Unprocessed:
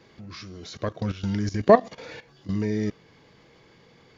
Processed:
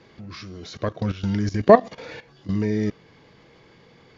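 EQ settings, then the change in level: distance through air 53 m; +3.0 dB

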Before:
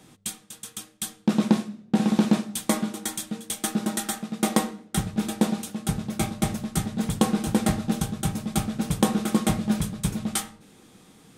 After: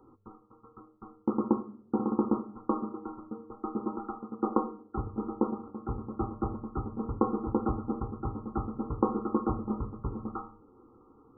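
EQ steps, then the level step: brick-wall FIR low-pass 1.4 kHz; static phaser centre 650 Hz, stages 6; 0.0 dB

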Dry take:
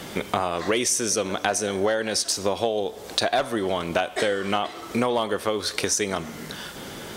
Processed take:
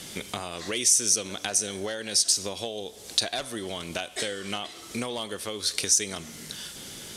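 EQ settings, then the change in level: low-pass 12 kHz 24 dB/octave; tilt shelf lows -5.5 dB, about 730 Hz; peaking EQ 1.1 kHz -14 dB 2.9 oct; 0.0 dB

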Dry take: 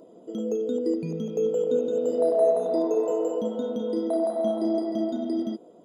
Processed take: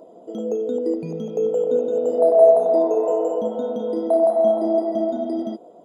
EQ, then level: peaking EQ 730 Hz +10.5 dB 1 oct; dynamic bell 4.5 kHz, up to -6 dB, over -48 dBFS, Q 1.5; 0.0 dB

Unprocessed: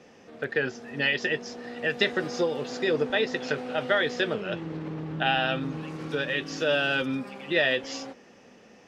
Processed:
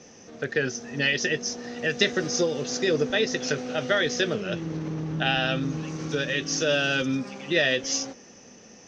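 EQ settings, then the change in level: dynamic bell 900 Hz, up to -6 dB, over -47 dBFS, Q 3.1; resonant low-pass 6.1 kHz, resonance Q 7.8; bass shelf 260 Hz +6.5 dB; 0.0 dB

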